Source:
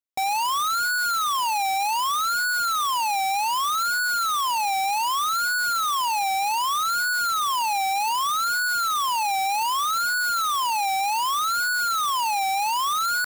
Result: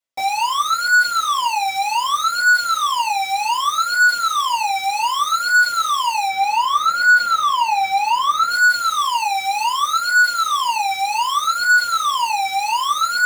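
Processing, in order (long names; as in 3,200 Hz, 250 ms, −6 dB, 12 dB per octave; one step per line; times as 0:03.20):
0:06.28–0:08.51: parametric band 14,000 Hz −10 dB 2.2 octaves
reverb reduction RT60 0.53 s
low-shelf EQ 220 Hz −10.5 dB
brickwall limiter −25 dBFS, peak gain reduction 5 dB
convolution reverb RT60 0.25 s, pre-delay 4 ms, DRR −10 dB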